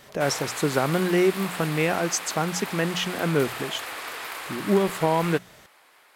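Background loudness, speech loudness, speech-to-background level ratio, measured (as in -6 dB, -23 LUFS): -33.5 LUFS, -25.0 LUFS, 8.5 dB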